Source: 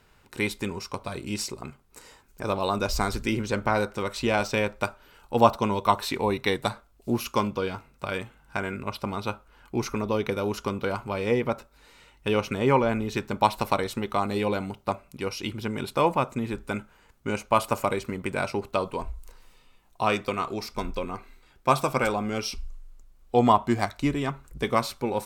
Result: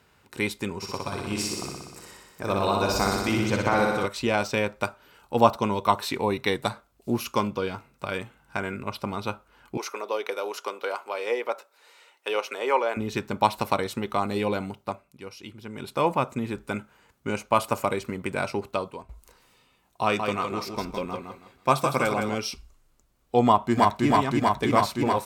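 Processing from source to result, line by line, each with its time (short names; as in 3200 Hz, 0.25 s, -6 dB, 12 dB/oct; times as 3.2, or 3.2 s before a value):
0.76–4.06 flutter echo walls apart 10.5 m, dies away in 1.3 s
9.77–12.97 HPF 430 Hz 24 dB/oct
14.65–16.12 dip -10 dB, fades 0.48 s
18.67–19.09 fade out, to -15 dB
20.03–22.35 feedback echo 0.161 s, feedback 26%, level -6 dB
23.45–24.07 echo throw 0.32 s, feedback 85%, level -1.5 dB
whole clip: HPF 74 Hz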